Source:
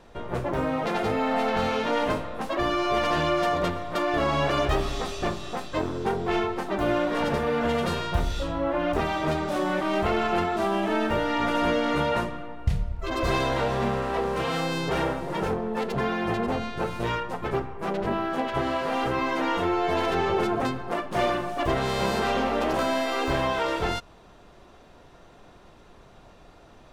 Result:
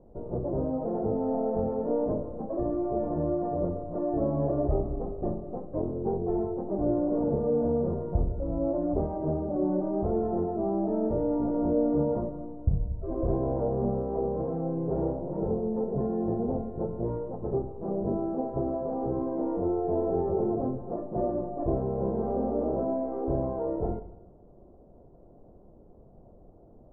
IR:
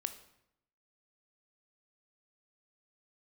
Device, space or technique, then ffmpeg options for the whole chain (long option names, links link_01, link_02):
next room: -filter_complex "[0:a]lowpass=frequency=630:width=0.5412,lowpass=frequency=630:width=1.3066[link_01];[1:a]atrim=start_sample=2205[link_02];[link_01][link_02]afir=irnorm=-1:irlink=0"